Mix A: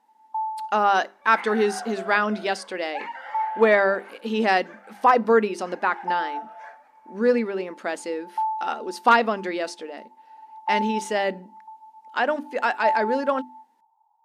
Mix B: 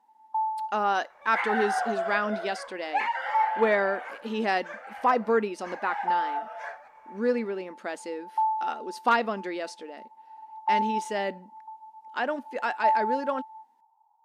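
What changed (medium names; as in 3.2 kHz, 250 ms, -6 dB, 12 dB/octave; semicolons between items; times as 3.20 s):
speech -6.0 dB; second sound +6.5 dB; master: remove hum notches 50/100/150/200/250/300/350/400 Hz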